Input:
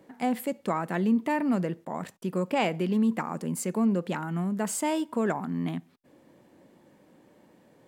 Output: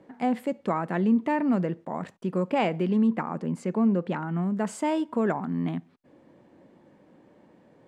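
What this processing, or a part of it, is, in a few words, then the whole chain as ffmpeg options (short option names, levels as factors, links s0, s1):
through cloth: -filter_complex "[0:a]lowpass=9100,highshelf=f=3700:g=-11.5,asettb=1/sr,asplit=3[s0][s1][s2];[s0]atrim=end=3.074[s3];[s1]atrim=start=3.07:end=4.43,asetpts=PTS-STARTPTS,afade=t=in:d=0.004:c=qsin,afade=t=out:st=1.356:d=0.004:c=qsin,highshelf=f=7300:g=-11.5[s4];[s2]atrim=start=4.426[s5];[s3][s4]acrossfade=d=0.004:c1=hsin:c2=qsin[s6];[s6][s5]acrossfade=d=0.004:c1=qsin:c2=hsin,volume=1.26"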